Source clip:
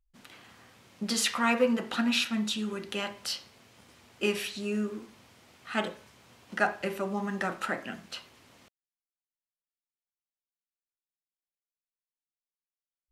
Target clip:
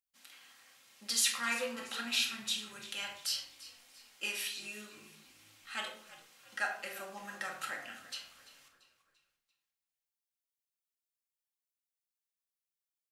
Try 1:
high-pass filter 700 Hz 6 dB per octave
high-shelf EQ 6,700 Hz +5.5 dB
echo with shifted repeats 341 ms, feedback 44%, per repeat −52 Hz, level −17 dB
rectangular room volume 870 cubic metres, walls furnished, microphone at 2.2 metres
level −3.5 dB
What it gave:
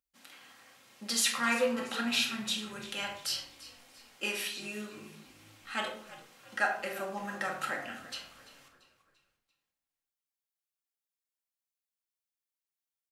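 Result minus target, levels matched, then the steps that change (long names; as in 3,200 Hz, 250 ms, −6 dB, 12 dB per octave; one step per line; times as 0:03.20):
500 Hz band +6.5 dB
change: high-pass filter 2,600 Hz 6 dB per octave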